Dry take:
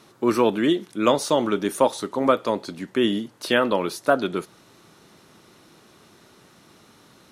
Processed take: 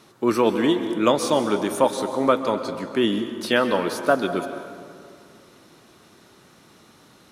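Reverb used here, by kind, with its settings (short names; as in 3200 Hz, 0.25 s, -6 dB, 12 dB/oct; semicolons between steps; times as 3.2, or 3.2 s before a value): plate-style reverb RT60 2.2 s, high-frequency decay 0.55×, pre-delay 0.115 s, DRR 8.5 dB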